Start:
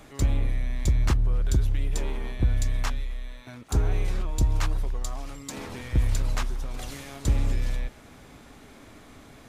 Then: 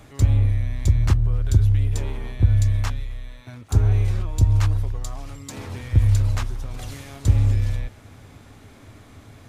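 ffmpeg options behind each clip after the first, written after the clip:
-af "equalizer=f=99:t=o:w=0.56:g=15"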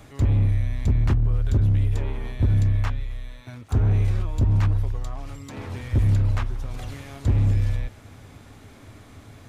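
-filter_complex "[0:a]acrossover=split=3300[a][b];[a]asoftclip=type=hard:threshold=-14.5dB[c];[b]acompressor=threshold=-51dB:ratio=6[d];[c][d]amix=inputs=2:normalize=0"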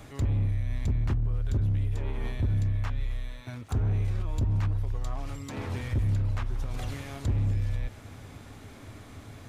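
-af "alimiter=limit=-21.5dB:level=0:latency=1:release=151"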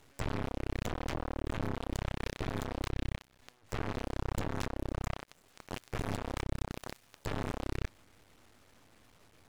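-af "aeval=exprs='0.0891*(cos(1*acos(clip(val(0)/0.0891,-1,1)))-cos(1*PI/2))+0.0355*(cos(8*acos(clip(val(0)/0.0891,-1,1)))-cos(8*PI/2))':c=same,aeval=exprs='max(val(0),0)':c=same"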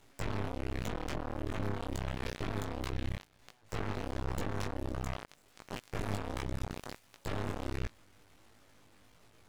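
-af "flanger=delay=17.5:depth=2.9:speed=1.4,volume=2.5dB"

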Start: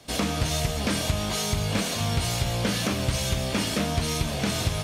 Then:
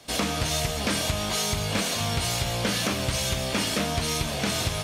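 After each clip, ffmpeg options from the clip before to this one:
-af "lowshelf=f=360:g=-5.5,volume=2dB"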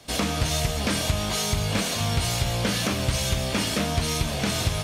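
-af "lowshelf=f=150:g=6"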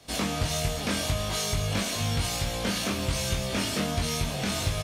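-filter_complex "[0:a]asplit=2[a][b];[b]adelay=21,volume=-3dB[c];[a][c]amix=inputs=2:normalize=0,volume=-5dB"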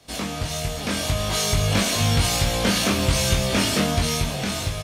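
-af "dynaudnorm=f=340:g=7:m=8dB"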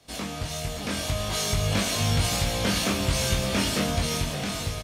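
-af "aecho=1:1:569:0.282,volume=-4.5dB"

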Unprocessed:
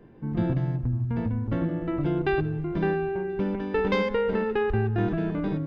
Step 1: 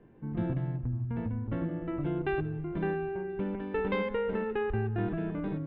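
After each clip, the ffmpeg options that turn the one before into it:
-af "lowpass=f=3.3k:w=0.5412,lowpass=f=3.3k:w=1.3066,volume=-6dB"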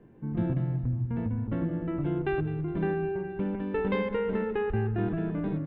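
-af "equalizer=f=170:w=0.45:g=3.5,aecho=1:1:207|414|621|828:0.188|0.0866|0.0399|0.0183"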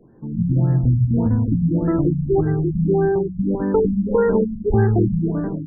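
-af "bandreject=f=50:t=h:w=6,bandreject=f=100:t=h:w=6,bandreject=f=150:t=h:w=6,bandreject=f=200:t=h:w=6,dynaudnorm=f=100:g=9:m=8.5dB,afftfilt=real='re*lt(b*sr/1024,220*pow(2000/220,0.5+0.5*sin(2*PI*1.7*pts/sr)))':imag='im*lt(b*sr/1024,220*pow(2000/220,0.5+0.5*sin(2*PI*1.7*pts/sr)))':win_size=1024:overlap=0.75,volume=4.5dB"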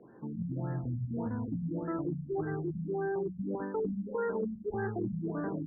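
-af "highpass=f=400:p=1,areverse,acompressor=threshold=-33dB:ratio=5,areverse,lowpass=f=1.6k:t=q:w=1.7"

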